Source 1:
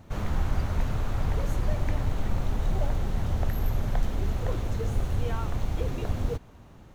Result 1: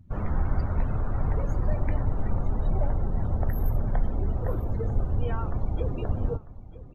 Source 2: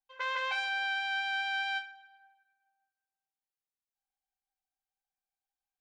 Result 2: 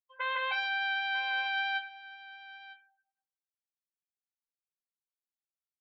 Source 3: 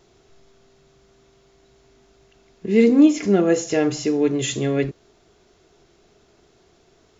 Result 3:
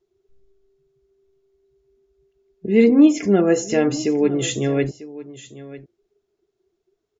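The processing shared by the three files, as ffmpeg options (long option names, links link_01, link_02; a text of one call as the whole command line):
ffmpeg -i in.wav -af "afftdn=noise_reduction=25:noise_floor=-41,aecho=1:1:947:0.141,volume=1dB" out.wav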